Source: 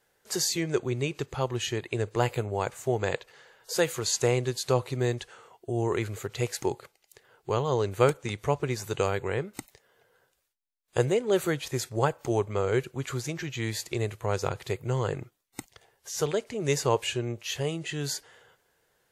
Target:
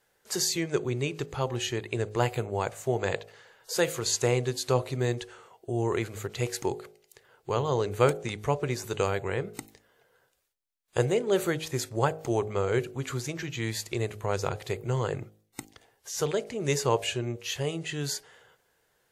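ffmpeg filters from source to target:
-af "bandreject=f=52.75:t=h:w=4,bandreject=f=105.5:t=h:w=4,bandreject=f=158.25:t=h:w=4,bandreject=f=211:t=h:w=4,bandreject=f=263.75:t=h:w=4,bandreject=f=316.5:t=h:w=4,bandreject=f=369.25:t=h:w=4,bandreject=f=422:t=h:w=4,bandreject=f=474.75:t=h:w=4,bandreject=f=527.5:t=h:w=4,bandreject=f=580.25:t=h:w=4,bandreject=f=633:t=h:w=4,bandreject=f=685.75:t=h:w=4,bandreject=f=738.5:t=h:w=4,bandreject=f=791.25:t=h:w=4"

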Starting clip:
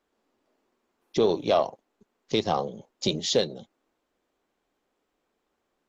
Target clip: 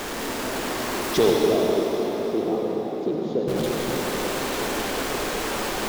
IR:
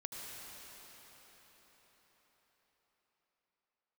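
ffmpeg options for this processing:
-filter_complex "[0:a]aeval=exprs='val(0)+0.5*0.0473*sgn(val(0))':c=same,asettb=1/sr,asplit=3[a][b][c];[a]atrim=end=1.304[d];[b]atrim=start=1.3:end=3.48,asetpts=PTS-STARTPTS,afade=t=in:d=0.004:c=qsin,afade=t=out:st=2.176:d=0.004:c=qsin,bandpass=f=330:t=q:w=2.1:csg=0[e];[c]atrim=start=3.476[f];[d][e]acrossfade=d=0.004:c1=hsin:c2=qsin[g];[g][f]acrossfade=d=0.004:c1=qsin:c2=hsin[h];[1:a]atrim=start_sample=2205[i];[h][i]afir=irnorm=-1:irlink=0,volume=6.5dB"

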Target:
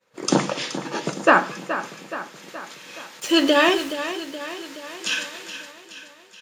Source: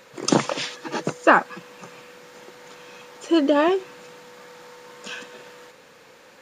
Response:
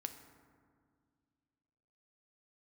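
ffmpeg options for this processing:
-filter_complex "[0:a]agate=range=-33dB:threshold=-39dB:ratio=3:detection=peak,acrossover=split=1700[a][b];[b]dynaudnorm=f=630:g=5:m=14dB[c];[a][c]amix=inputs=2:normalize=0,flanger=delay=9.3:depth=5.8:regen=-69:speed=0.59:shape=triangular,asettb=1/sr,asplit=3[d][e][f];[d]atrim=end=3.204[g];[e]atrim=start=3.2:end=3.94,asetpts=PTS-STARTPTS,afade=t=in:d=0.004:c=qsin,afade=t=out:st=0.736:d=0.004:c=qsin,aeval=exprs='val(0)*gte(abs(val(0)),0.015)':c=same[h];[f]atrim=start=3.936[i];[g][h]acrossfade=d=0.004:c1=hsin:c2=qsin[j];[j][i]acrossfade=d=0.004:c1=qsin:c2=hsin,aecho=1:1:423|846|1269|1692|2115|2538:0.266|0.152|0.0864|0.0493|0.0281|0.016,asplit=2[k][l];[1:a]atrim=start_sample=2205,atrim=end_sample=3969,asetrate=29988,aresample=44100[m];[l][m]afir=irnorm=-1:irlink=0,volume=5dB[n];[k][n]amix=inputs=2:normalize=0,volume=-4.5dB"

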